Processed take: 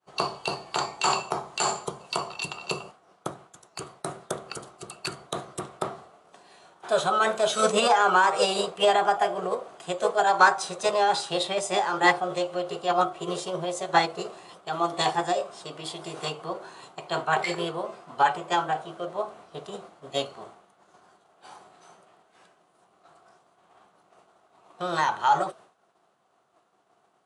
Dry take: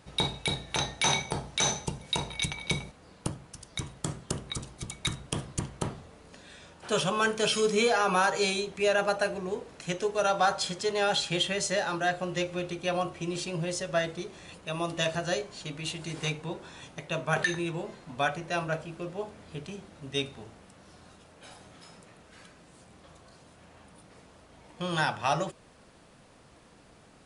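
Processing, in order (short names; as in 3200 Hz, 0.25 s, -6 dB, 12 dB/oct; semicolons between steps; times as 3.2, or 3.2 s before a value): speaker cabinet 200–8400 Hz, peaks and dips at 260 Hz -6 dB, 380 Hz +9 dB, 710 Hz +10 dB, 1100 Hz +8 dB, 1700 Hz -5 dB, 4400 Hz -5 dB; expander -44 dBFS; formant shift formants +3 st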